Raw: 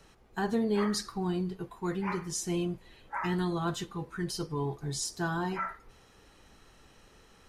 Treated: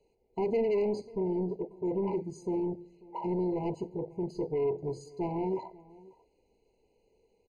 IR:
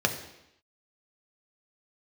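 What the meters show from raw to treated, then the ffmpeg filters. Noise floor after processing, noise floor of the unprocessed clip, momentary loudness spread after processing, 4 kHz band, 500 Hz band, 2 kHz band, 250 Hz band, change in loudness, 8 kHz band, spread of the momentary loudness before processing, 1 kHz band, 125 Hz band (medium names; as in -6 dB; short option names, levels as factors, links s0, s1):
-72 dBFS, -60 dBFS, 8 LU, under -15 dB, +5.0 dB, under -10 dB, -1.0 dB, 0.0 dB, under -20 dB, 9 LU, -4.0 dB, -4.5 dB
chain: -filter_complex "[0:a]lowpass=7400,equalizer=f=440:w=2.3:g=13,afwtdn=0.0355,asoftclip=type=tanh:threshold=0.0447,asplit=2[s0][s1];[s1]adelay=542.3,volume=0.0794,highshelf=f=4000:g=-12.2[s2];[s0][s2]amix=inputs=2:normalize=0,asplit=2[s3][s4];[1:a]atrim=start_sample=2205,asetrate=41895,aresample=44100[s5];[s4][s5]afir=irnorm=-1:irlink=0,volume=0.0562[s6];[s3][s6]amix=inputs=2:normalize=0,afftfilt=real='re*eq(mod(floor(b*sr/1024/1000),2),0)':imag='im*eq(mod(floor(b*sr/1024/1000),2),0)':win_size=1024:overlap=0.75"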